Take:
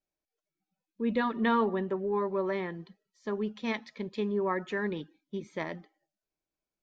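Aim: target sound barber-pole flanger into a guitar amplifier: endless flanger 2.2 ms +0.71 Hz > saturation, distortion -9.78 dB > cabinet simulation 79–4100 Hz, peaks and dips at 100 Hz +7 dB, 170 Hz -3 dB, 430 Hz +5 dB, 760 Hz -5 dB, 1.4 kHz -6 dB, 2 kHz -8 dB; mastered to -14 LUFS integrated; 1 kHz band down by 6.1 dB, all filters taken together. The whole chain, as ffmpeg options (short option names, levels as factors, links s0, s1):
-filter_complex "[0:a]equalizer=f=1000:t=o:g=-4,asplit=2[s0][s1];[s1]adelay=2.2,afreqshift=0.71[s2];[s0][s2]amix=inputs=2:normalize=1,asoftclip=threshold=0.0266,highpass=79,equalizer=f=100:t=q:w=4:g=7,equalizer=f=170:t=q:w=4:g=-3,equalizer=f=430:t=q:w=4:g=5,equalizer=f=760:t=q:w=4:g=-5,equalizer=f=1400:t=q:w=4:g=-6,equalizer=f=2000:t=q:w=4:g=-8,lowpass=f=4100:w=0.5412,lowpass=f=4100:w=1.3066,volume=17.8"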